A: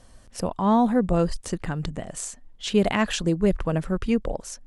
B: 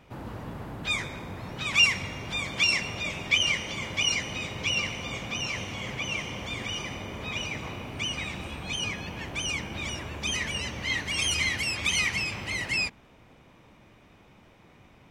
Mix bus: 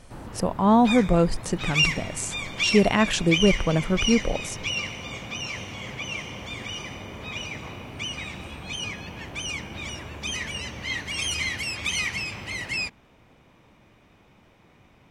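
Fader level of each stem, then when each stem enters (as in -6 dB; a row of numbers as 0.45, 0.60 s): +2.0, -1.0 dB; 0.00, 0.00 s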